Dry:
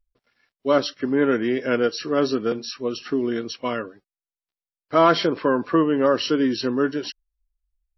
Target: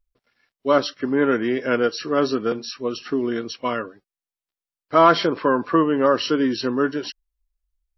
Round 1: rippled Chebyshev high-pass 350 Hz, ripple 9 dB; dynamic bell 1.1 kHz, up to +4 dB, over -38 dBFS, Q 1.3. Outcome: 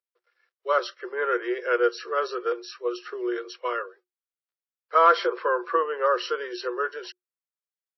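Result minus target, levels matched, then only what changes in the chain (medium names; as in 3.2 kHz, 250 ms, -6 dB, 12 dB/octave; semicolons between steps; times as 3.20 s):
250 Hz band -10.5 dB
remove: rippled Chebyshev high-pass 350 Hz, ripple 9 dB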